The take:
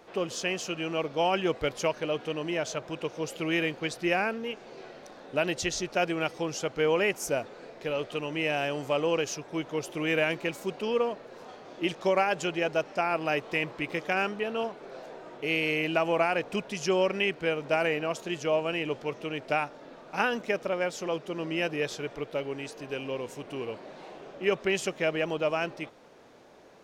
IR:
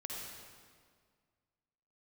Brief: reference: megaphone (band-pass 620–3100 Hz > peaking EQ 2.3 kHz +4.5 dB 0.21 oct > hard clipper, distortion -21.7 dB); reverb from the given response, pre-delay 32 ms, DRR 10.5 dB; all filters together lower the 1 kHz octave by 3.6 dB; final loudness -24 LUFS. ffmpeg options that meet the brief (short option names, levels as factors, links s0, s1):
-filter_complex "[0:a]equalizer=f=1000:t=o:g=-3.5,asplit=2[s0][s1];[1:a]atrim=start_sample=2205,adelay=32[s2];[s1][s2]afir=irnorm=-1:irlink=0,volume=0.316[s3];[s0][s3]amix=inputs=2:normalize=0,highpass=620,lowpass=3100,equalizer=f=2300:t=o:w=0.21:g=4.5,asoftclip=type=hard:threshold=0.0891,volume=2.82"